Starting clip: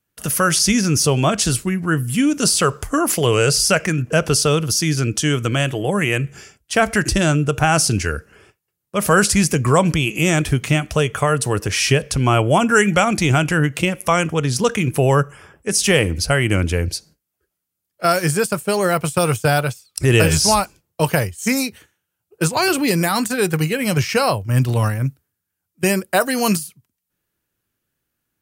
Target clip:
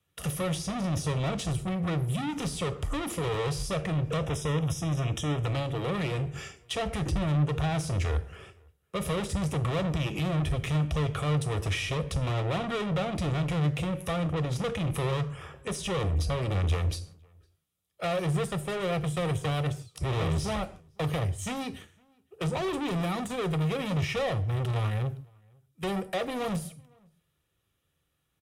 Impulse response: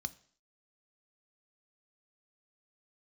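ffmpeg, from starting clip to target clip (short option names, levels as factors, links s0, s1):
-filter_complex "[0:a]lowshelf=f=420:g=-4.5,acrossover=split=590[s0][s1];[s1]acompressor=threshold=0.0251:ratio=8[s2];[s0][s2]amix=inputs=2:normalize=0,asoftclip=type=hard:threshold=0.075,asplit=2[s3][s4];[s4]adynamicsmooth=sensitivity=6.5:basefreq=1300,volume=0.708[s5];[s3][s5]amix=inputs=2:normalize=0,asoftclip=type=tanh:threshold=0.0447,asettb=1/sr,asplit=3[s6][s7][s8];[s6]atrim=end=4.184[s9];[s7]atrim=start=4.18:end=5.46,asetpts=PTS-STARTPTS,afade=t=in:d=0.004:c=qsin,afade=t=out:st=1.276:d=0.004:c=qsin,asuperstop=centerf=4400:order=8:qfactor=3.8[s10];[s8]atrim=start=5.456[s11];[s9][s10]acrossfade=d=0.004:c1=hsin:c2=qsin[s12];[s12][s11]acrossfade=d=0.004:c1=qsin:c2=hsin,asplit=2[s13][s14];[s14]adelay=507.3,volume=0.0316,highshelf=f=4000:g=-11.4[s15];[s13][s15]amix=inputs=2:normalize=0[s16];[1:a]atrim=start_sample=2205,atrim=end_sample=3969,asetrate=23814,aresample=44100[s17];[s16][s17]afir=irnorm=-1:irlink=0,volume=0.668"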